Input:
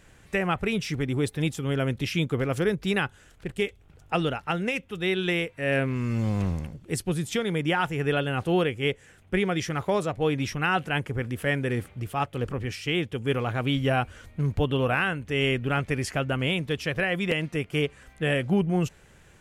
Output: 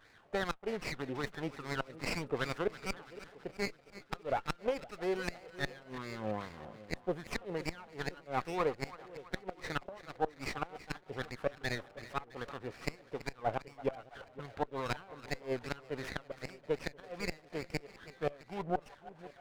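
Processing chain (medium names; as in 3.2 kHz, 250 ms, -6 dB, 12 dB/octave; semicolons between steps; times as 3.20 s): wah-wah 2.5 Hz 610–2300 Hz, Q 2.9; inverted gate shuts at -24 dBFS, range -25 dB; on a send: two-band feedback delay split 620 Hz, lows 513 ms, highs 331 ms, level -15 dB; on the sum: sliding maximum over 9 samples; trim +4.5 dB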